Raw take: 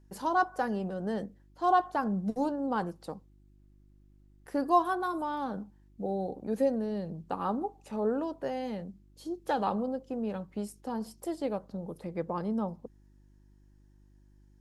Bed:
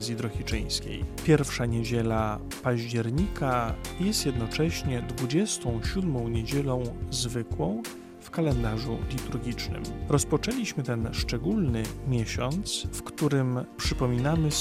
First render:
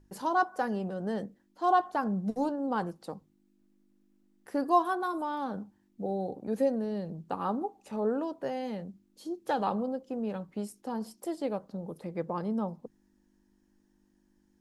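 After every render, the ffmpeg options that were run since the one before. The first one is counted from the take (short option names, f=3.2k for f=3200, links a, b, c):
-af "bandreject=f=50:t=h:w=4,bandreject=f=100:t=h:w=4,bandreject=f=150:t=h:w=4"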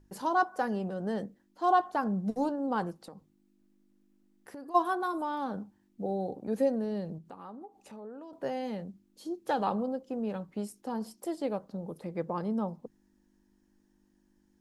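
-filter_complex "[0:a]asplit=3[a][b][c];[a]afade=t=out:st=2.98:d=0.02[d];[b]acompressor=threshold=-42dB:ratio=6:attack=3.2:release=140:knee=1:detection=peak,afade=t=in:st=2.98:d=0.02,afade=t=out:st=4.74:d=0.02[e];[c]afade=t=in:st=4.74:d=0.02[f];[d][e][f]amix=inputs=3:normalize=0,asettb=1/sr,asplit=3[g][h][i];[g]atrim=end=7.184[j];[h]atrim=start=7.18:end=8.33,asetpts=PTS-STARTPTS,afade=t=in:d=0.004:c=qsin,afade=t=out:st=1.146:d=0.004:c=qsin,acompressor=threshold=-49dB:ratio=2.5:attack=3.2:release=140:knee=1:detection=peak[k];[i]atrim=start=8.326[l];[j][k]acrossfade=d=0.004:c1=hsin:c2=qsin[m];[m][l]acrossfade=d=0.004:c1=qsin:c2=hsin"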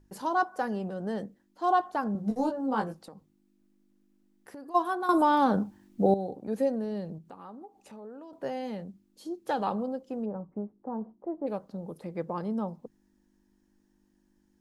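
-filter_complex "[0:a]asettb=1/sr,asplit=3[a][b][c];[a]atrim=end=2.134[d];[b]atrim=start=2.13:end=3.03,asetpts=PTS-STARTPTS,afade=t=in:d=0.004:c=qsin,afade=t=out:st=0.896:d=0.004:c=qsin,asplit=2[e][f];[f]adelay=19,volume=-2.5dB[g];[e][g]amix=inputs=2:normalize=0,atrim=end_sample=39690[h];[c]atrim=start=3.026[i];[d][h]acrossfade=d=0.004:c1=hsin:c2=qsin[j];[j][i]acrossfade=d=0.004:c1=qsin:c2=hsin,asplit=3[k][l][m];[k]afade=t=out:st=10.24:d=0.02[n];[l]lowpass=f=1.1k:w=0.5412,lowpass=f=1.1k:w=1.3066,afade=t=in:st=10.24:d=0.02,afade=t=out:st=11.46:d=0.02[o];[m]afade=t=in:st=11.46:d=0.02[p];[n][o][p]amix=inputs=3:normalize=0,asplit=3[q][r][s];[q]atrim=end=5.092[t];[r]atrim=start=5.088:end=6.142,asetpts=PTS-STARTPTS,volume=11dB[u];[s]atrim=start=6.138[v];[t][u]acrossfade=d=0.004:c1=hsin:c2=hsin[w];[w][v]acrossfade=d=0.004:c1=hsin:c2=hsin"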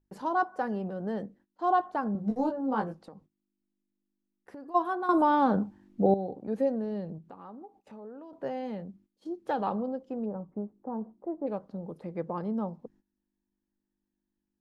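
-af "aemphasis=mode=reproduction:type=75kf,agate=range=-16dB:threshold=-58dB:ratio=16:detection=peak"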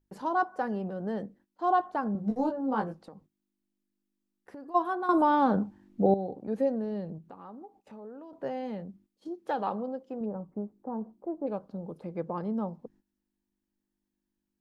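-filter_complex "[0:a]asettb=1/sr,asplit=3[a][b][c];[a]atrim=end=9.284[d];[b]atrim=start=9.28:end=10.21,asetpts=PTS-STARTPTS,afade=t=in:d=0.004:c=qsin,afade=t=out:st=0.926:d=0.004:c=qsin,lowshelf=f=170:g=-9.5[e];[c]atrim=start=10.206[f];[d][e]acrossfade=d=0.004:c1=hsin:c2=qsin[g];[g][f]acrossfade=d=0.004:c1=qsin:c2=hsin,asettb=1/sr,asplit=3[h][i][j];[h]atrim=end=11.144[k];[i]atrim=start=11.14:end=12.33,asetpts=PTS-STARTPTS,afade=t=in:d=0.004:c=qsin,afade=t=out:st=1.186:d=0.004:c=qsin,bandreject=f=1.9k:w=8.1[l];[j]atrim=start=12.326[m];[k][l]acrossfade=d=0.004:c1=hsin:c2=qsin[n];[n][m]acrossfade=d=0.004:c1=qsin:c2=hsin"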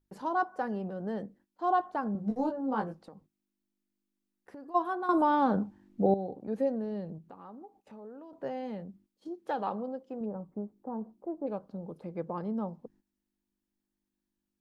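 -af "volume=-2dB"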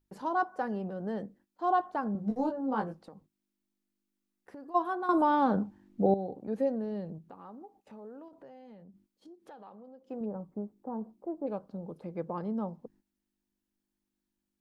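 -filter_complex "[0:a]asettb=1/sr,asplit=3[a][b][c];[a]atrim=end=8.284[d];[b]atrim=start=8.28:end=10.1,asetpts=PTS-STARTPTS,afade=t=in:d=0.004:c=qsin,afade=t=out:st=1.816:d=0.004:c=qsin,acompressor=threshold=-53dB:ratio=3:attack=3.2:release=140:knee=1:detection=peak[e];[c]atrim=start=10.096[f];[d][e]acrossfade=d=0.004:c1=hsin:c2=qsin[g];[g][f]acrossfade=d=0.004:c1=qsin:c2=hsin"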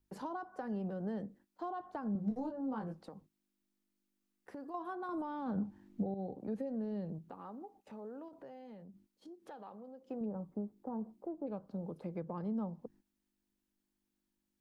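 -filter_complex "[0:a]alimiter=limit=-24dB:level=0:latency=1:release=59,acrossover=split=210[a][b];[b]acompressor=threshold=-41dB:ratio=4[c];[a][c]amix=inputs=2:normalize=0"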